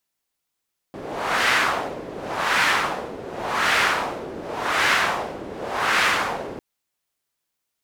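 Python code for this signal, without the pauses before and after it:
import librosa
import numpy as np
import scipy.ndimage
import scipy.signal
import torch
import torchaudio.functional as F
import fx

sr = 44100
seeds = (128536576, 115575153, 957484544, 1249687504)

y = fx.wind(sr, seeds[0], length_s=5.65, low_hz=400.0, high_hz=1800.0, q=1.4, gusts=5, swing_db=15.5)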